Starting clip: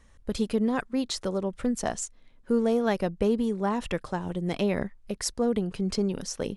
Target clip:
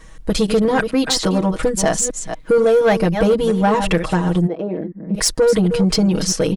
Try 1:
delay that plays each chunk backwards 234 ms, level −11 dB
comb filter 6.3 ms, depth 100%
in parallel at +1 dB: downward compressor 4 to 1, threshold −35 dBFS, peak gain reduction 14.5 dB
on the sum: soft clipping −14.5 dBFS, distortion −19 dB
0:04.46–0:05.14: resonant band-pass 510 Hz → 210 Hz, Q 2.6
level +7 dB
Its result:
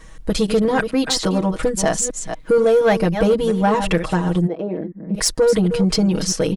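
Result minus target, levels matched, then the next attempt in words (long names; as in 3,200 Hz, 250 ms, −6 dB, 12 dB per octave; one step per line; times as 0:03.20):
downward compressor: peak gain reduction +5.5 dB
delay that plays each chunk backwards 234 ms, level −11 dB
comb filter 6.3 ms, depth 100%
in parallel at +1 dB: downward compressor 4 to 1, threshold −27.5 dBFS, peak gain reduction 9 dB
on the sum: soft clipping −14.5 dBFS, distortion −17 dB
0:04.46–0:05.14: resonant band-pass 510 Hz → 210 Hz, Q 2.6
level +7 dB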